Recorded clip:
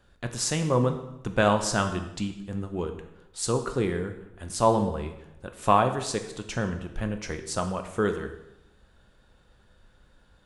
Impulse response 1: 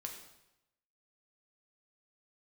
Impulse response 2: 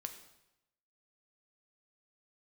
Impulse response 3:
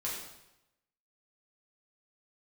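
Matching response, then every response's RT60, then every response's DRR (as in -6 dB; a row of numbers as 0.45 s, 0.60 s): 2; 0.90 s, 0.90 s, 0.90 s; 1.5 dB, 6.0 dB, -6.0 dB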